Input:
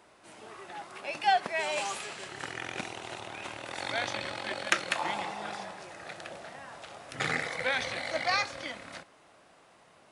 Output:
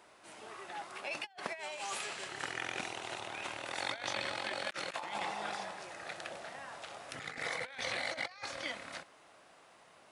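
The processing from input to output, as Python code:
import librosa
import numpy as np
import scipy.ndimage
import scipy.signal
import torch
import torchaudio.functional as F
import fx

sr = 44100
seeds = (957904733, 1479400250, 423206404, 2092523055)

y = fx.low_shelf(x, sr, hz=350.0, db=-6.5)
y = fx.over_compress(y, sr, threshold_db=-36.0, ratio=-0.5)
y = y * 10.0 ** (-3.0 / 20.0)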